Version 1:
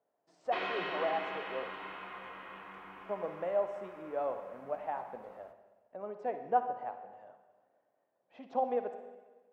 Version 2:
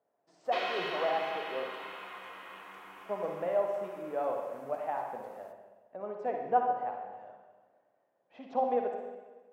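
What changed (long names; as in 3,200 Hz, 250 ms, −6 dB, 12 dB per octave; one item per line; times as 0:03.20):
speech: send +7.5 dB
background: add bass and treble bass −8 dB, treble +14 dB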